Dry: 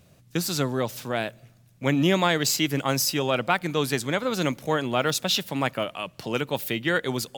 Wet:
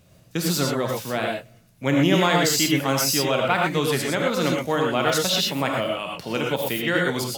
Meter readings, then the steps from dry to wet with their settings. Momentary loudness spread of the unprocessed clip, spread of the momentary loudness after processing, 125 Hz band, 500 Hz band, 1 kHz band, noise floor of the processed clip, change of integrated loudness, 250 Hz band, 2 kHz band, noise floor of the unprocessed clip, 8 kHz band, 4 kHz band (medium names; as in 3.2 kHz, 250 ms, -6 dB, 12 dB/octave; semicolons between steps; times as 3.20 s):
8 LU, 9 LU, +2.5 dB, +3.5 dB, +3.5 dB, -55 dBFS, +3.5 dB, +3.0 dB, +3.0 dB, -57 dBFS, +3.5 dB, +3.0 dB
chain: gated-style reverb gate 140 ms rising, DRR -0.5 dB